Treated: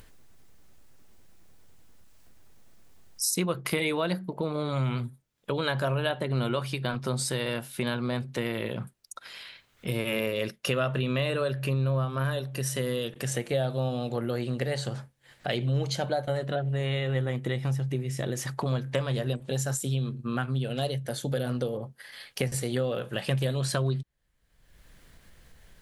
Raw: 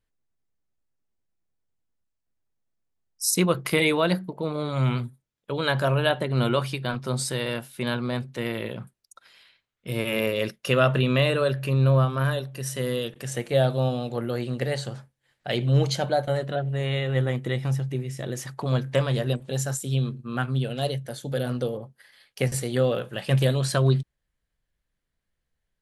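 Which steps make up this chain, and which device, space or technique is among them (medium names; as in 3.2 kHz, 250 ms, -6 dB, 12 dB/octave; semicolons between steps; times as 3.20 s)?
upward and downward compression (upward compressor, threshold -41 dBFS; compression 3:1, threshold -34 dBFS, peak gain reduction 14 dB); trim +5.5 dB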